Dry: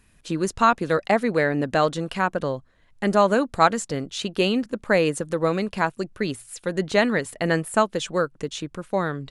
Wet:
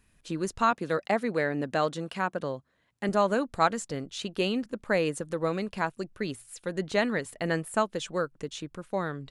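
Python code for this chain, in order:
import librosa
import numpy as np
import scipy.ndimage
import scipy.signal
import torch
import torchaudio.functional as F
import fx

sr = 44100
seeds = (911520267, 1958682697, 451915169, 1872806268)

y = fx.highpass(x, sr, hz=110.0, slope=12, at=(0.71, 3.09))
y = y * librosa.db_to_amplitude(-6.5)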